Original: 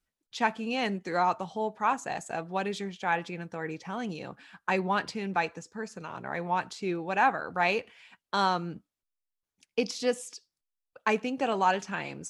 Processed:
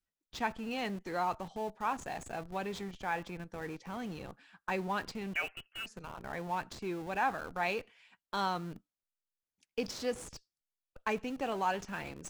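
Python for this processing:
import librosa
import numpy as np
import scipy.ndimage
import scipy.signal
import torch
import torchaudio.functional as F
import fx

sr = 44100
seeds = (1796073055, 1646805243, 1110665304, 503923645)

p1 = fx.freq_invert(x, sr, carrier_hz=3100, at=(5.34, 5.86))
p2 = fx.schmitt(p1, sr, flips_db=-38.0)
p3 = p1 + (p2 * 10.0 ** (-10.5 / 20.0))
y = p3 * 10.0 ** (-8.0 / 20.0)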